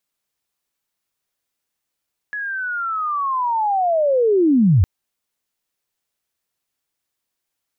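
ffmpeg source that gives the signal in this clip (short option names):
-f lavfi -i "aevalsrc='pow(10,(-23.5+14*t/2.51)/20)*sin(2*PI*(1700*t-1623*t*t/(2*2.51)))':d=2.51:s=44100"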